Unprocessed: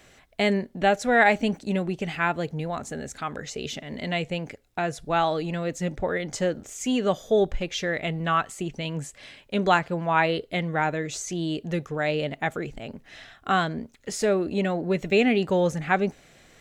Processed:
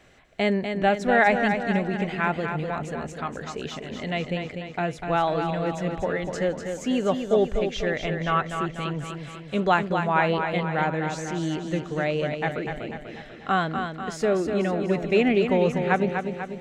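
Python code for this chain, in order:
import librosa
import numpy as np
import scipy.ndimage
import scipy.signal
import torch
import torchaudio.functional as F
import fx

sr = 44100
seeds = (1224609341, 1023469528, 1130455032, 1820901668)

y = fx.high_shelf(x, sr, hz=5000.0, db=-11.5)
y = fx.echo_feedback(y, sr, ms=246, feedback_pct=55, wet_db=-6.5)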